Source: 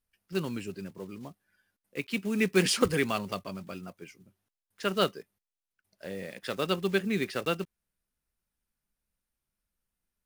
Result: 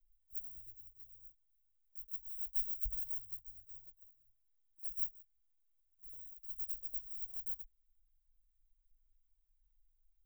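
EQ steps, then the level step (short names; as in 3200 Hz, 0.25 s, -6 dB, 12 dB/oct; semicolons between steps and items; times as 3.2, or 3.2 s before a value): inverse Chebyshev band-stop 210–7500 Hz, stop band 80 dB; bell 140 Hz -7 dB 0.3 oct; +17.0 dB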